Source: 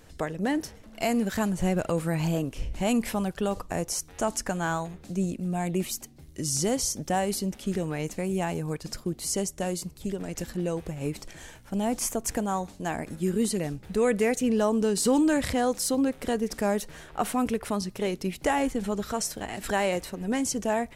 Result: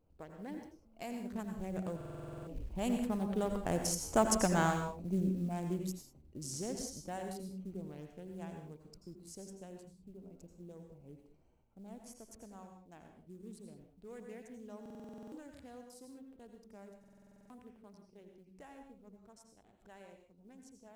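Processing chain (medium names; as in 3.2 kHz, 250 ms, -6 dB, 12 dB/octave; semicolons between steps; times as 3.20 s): local Wiener filter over 25 samples; Doppler pass-by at 4.28 s, 5 m/s, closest 2.4 m; short-mantissa float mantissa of 4-bit; on a send at -4.5 dB: reverberation, pre-delay 79 ms; on the sum: buffer glitch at 1.96/14.81/16.99 s, samples 2048, times 10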